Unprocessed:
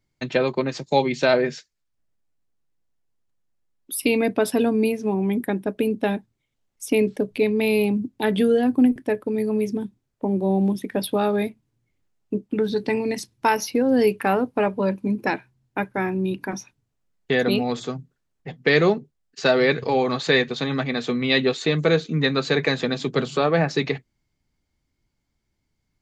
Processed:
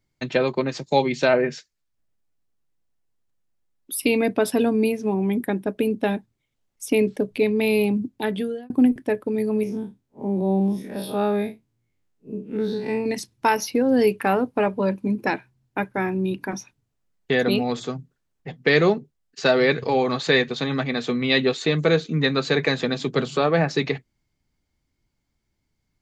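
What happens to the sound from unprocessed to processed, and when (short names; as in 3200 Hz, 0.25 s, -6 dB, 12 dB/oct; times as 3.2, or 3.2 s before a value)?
1.28–1.52 spectral gain 3100–8600 Hz -14 dB
8.08–8.7 fade out
9.63–13.06 time blur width 0.1 s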